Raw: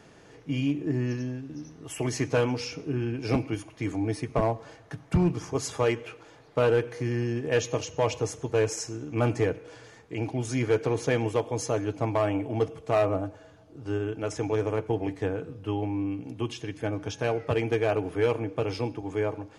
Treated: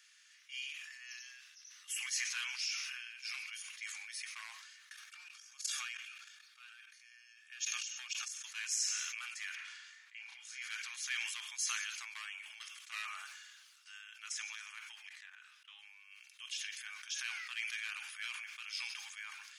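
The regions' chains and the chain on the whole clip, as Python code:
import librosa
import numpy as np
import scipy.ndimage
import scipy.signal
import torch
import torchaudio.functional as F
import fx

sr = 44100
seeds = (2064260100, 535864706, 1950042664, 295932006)

y = fx.chain(x, sr, fx.low_shelf(hz=410.0, db=8.5),
    fx.level_steps(step_db=16),
    fx.notch_comb(f0_hz=1000.0), at=(4.93, 8.44))
y = fx.chain(y, sr, fx.lowpass(hz=1600.0, slope=6),
    fx.doubler(ms=35.0, db=-3), at=(9.55, 10.62))
y = fx.chain(y, sr, fx.high_shelf(hz=3600.0, db=-9.0),
    fx.level_steps(step_db=15),
    fx.doppler_dist(depth_ms=0.12), at=(15.09, 15.79))
y = scipy.signal.sosfilt(scipy.signal.bessel(8, 2700.0, 'highpass', norm='mag', fs=sr, output='sos'), y)
y = fx.sustainer(y, sr, db_per_s=31.0)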